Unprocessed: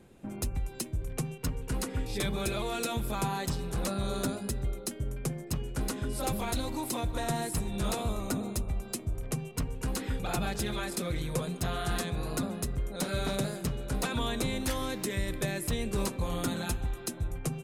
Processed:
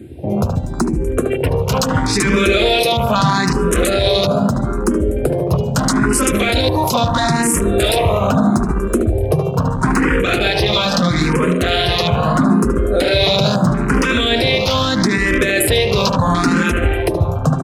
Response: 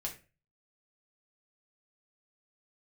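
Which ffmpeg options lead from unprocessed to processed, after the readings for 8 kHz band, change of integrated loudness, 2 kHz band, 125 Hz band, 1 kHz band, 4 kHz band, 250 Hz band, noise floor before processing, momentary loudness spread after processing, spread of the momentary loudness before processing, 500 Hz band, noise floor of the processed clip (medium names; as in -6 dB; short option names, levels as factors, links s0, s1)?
+13.0 dB, +18.0 dB, +21.0 dB, +16.5 dB, +19.0 dB, +20.5 dB, +18.5 dB, -44 dBFS, 4 LU, 4 LU, +20.0 dB, -20 dBFS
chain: -filter_complex "[0:a]highshelf=f=9900:g=2,asplit=2[s0][s1];[s1]adelay=73,lowpass=f=2500:p=1,volume=0.447,asplit=2[s2][s3];[s3]adelay=73,lowpass=f=2500:p=1,volume=0.55,asplit=2[s4][s5];[s5]adelay=73,lowpass=f=2500:p=1,volume=0.55,asplit=2[s6][s7];[s7]adelay=73,lowpass=f=2500:p=1,volume=0.55,asplit=2[s8][s9];[s9]adelay=73,lowpass=f=2500:p=1,volume=0.55,asplit=2[s10][s11];[s11]adelay=73,lowpass=f=2500:p=1,volume=0.55,asplit=2[s12][s13];[s13]adelay=73,lowpass=f=2500:p=1,volume=0.55[s14];[s2][s4][s6][s8][s10][s12][s14]amix=inputs=7:normalize=0[s15];[s0][s15]amix=inputs=2:normalize=0,acrossover=split=330|1900[s16][s17][s18];[s16]acompressor=threshold=0.01:ratio=4[s19];[s17]acompressor=threshold=0.01:ratio=4[s20];[s18]acompressor=threshold=0.0141:ratio=4[s21];[s19][s20][s21]amix=inputs=3:normalize=0,highpass=59,equalizer=f=14000:t=o:w=0.39:g=-5,bandreject=f=810:w=12,afwtdn=0.00447,alimiter=level_in=35.5:limit=0.891:release=50:level=0:latency=1,asplit=2[s22][s23];[s23]afreqshift=0.77[s24];[s22][s24]amix=inputs=2:normalize=1,volume=0.841"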